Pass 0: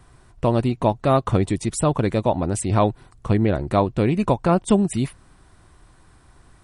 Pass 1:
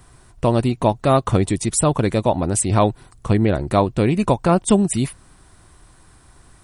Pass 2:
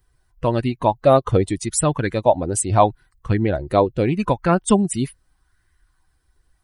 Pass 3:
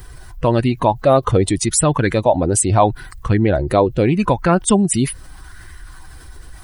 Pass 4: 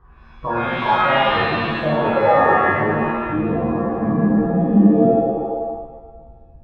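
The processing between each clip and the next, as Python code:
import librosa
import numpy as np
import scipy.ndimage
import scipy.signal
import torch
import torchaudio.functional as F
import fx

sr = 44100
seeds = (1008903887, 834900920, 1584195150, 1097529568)

y1 = fx.high_shelf(x, sr, hz=6100.0, db=9.5)
y1 = y1 * librosa.db_to_amplitude(2.0)
y2 = fx.bin_expand(y1, sr, power=1.5)
y2 = fx.bell_lfo(y2, sr, hz=0.79, low_hz=430.0, high_hz=1900.0, db=9)
y3 = fx.env_flatten(y2, sr, amount_pct=50)
y4 = fx.filter_sweep_lowpass(y3, sr, from_hz=1100.0, to_hz=210.0, start_s=0.82, end_s=4.06, q=5.1)
y4 = fx.rev_shimmer(y4, sr, seeds[0], rt60_s=1.3, semitones=7, shimmer_db=-2, drr_db=-7.5)
y4 = y4 * librosa.db_to_amplitude(-18.0)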